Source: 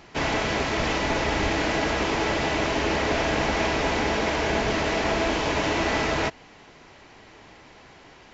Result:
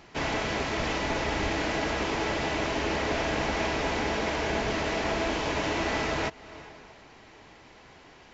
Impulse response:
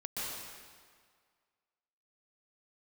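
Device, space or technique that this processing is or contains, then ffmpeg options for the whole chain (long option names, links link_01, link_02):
ducked reverb: -filter_complex "[0:a]asplit=3[link_01][link_02][link_03];[1:a]atrim=start_sample=2205[link_04];[link_02][link_04]afir=irnorm=-1:irlink=0[link_05];[link_03]apad=whole_len=367539[link_06];[link_05][link_06]sidechaincompress=threshold=-48dB:ratio=4:attack=31:release=194,volume=-10dB[link_07];[link_01][link_07]amix=inputs=2:normalize=0,volume=-4.5dB"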